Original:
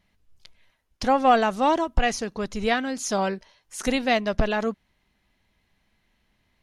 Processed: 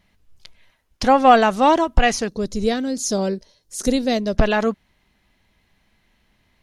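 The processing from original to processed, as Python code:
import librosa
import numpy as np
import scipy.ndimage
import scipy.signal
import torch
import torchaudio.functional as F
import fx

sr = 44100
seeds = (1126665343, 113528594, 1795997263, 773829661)

y = fx.band_shelf(x, sr, hz=1500.0, db=-12.5, octaves=2.4, at=(2.28, 4.37))
y = y * 10.0 ** (6.0 / 20.0)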